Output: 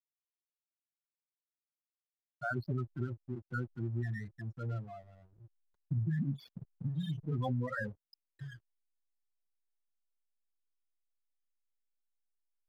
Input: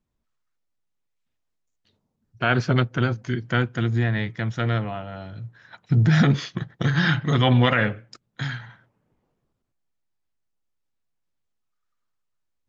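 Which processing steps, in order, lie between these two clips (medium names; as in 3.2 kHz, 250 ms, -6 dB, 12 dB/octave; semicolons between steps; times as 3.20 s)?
expander on every frequency bin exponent 1.5; 6.19–7.23 s: elliptic band-stop 290–2200 Hz, stop band 40 dB; loudest bins only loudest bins 8; hysteresis with a dead band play -42 dBFS; compression, threshold -22 dBFS, peak gain reduction 7.5 dB; trim -8.5 dB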